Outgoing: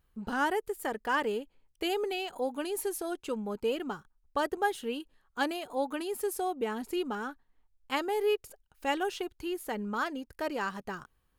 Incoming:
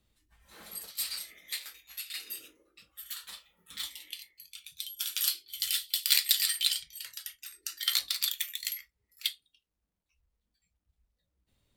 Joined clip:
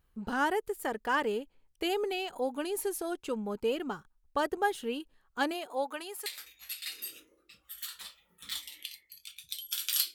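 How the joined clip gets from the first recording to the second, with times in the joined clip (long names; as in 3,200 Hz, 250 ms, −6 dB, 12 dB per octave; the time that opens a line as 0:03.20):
outgoing
0:05.53–0:06.26: high-pass filter 230 Hz → 960 Hz
0:06.26: continue with incoming from 0:01.54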